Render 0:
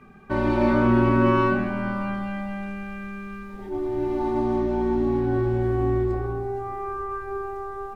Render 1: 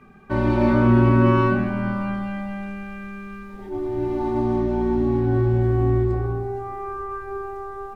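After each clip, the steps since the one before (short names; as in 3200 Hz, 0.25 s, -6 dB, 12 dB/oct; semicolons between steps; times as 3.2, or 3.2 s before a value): dynamic EQ 110 Hz, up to +7 dB, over -36 dBFS, Q 0.77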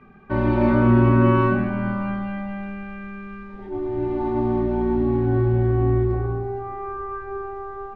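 LPF 3200 Hz 12 dB/oct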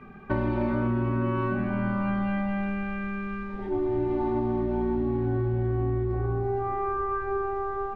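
compressor 10:1, threshold -26 dBFS, peak gain reduction 14.5 dB; gain +3 dB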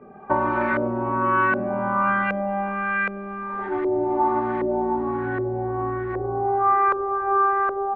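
tilt +4.5 dB/oct; LFO low-pass saw up 1.3 Hz 510–1900 Hz; gain +7.5 dB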